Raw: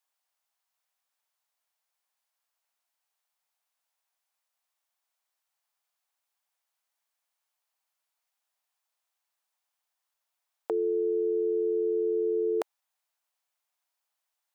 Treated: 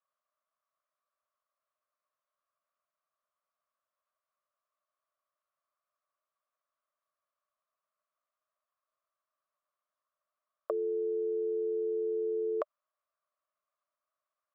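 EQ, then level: double band-pass 830 Hz, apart 0.92 oct; +8.0 dB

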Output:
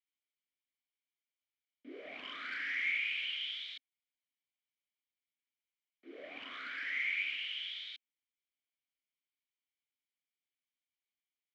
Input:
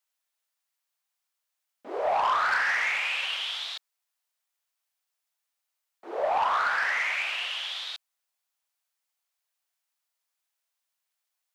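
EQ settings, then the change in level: vowel filter i; +3.5 dB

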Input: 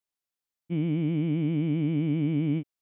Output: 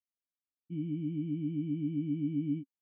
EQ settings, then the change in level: vocal tract filter i; air absorption 180 m; fixed phaser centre 3000 Hz, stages 8; +1.0 dB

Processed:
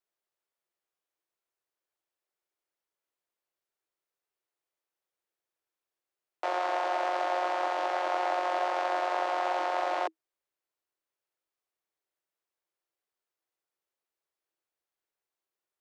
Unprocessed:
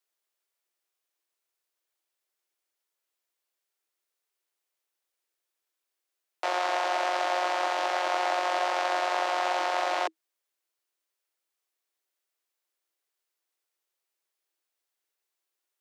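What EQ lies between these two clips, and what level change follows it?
high shelf 2000 Hz -10.5 dB; 0.0 dB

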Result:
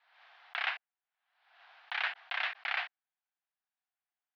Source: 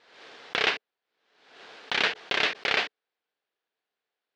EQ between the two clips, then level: elliptic high-pass 720 Hz, stop band 60 dB; dynamic EQ 1700 Hz, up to +3 dB, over -36 dBFS, Q 0.94; air absorption 270 m; -7.0 dB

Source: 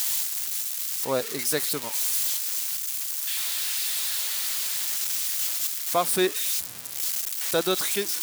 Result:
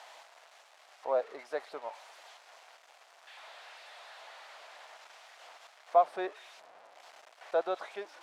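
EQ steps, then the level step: ladder band-pass 760 Hz, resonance 55%; +6.0 dB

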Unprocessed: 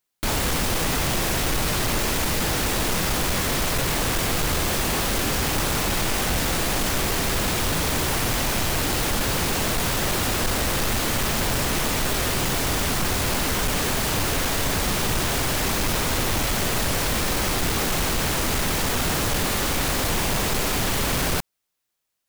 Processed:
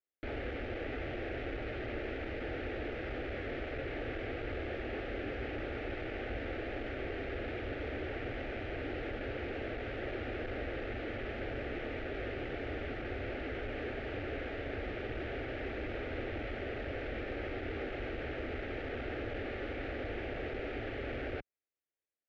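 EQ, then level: HPF 70 Hz 6 dB/oct; LPF 2200 Hz 24 dB/oct; fixed phaser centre 420 Hz, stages 4; -8.5 dB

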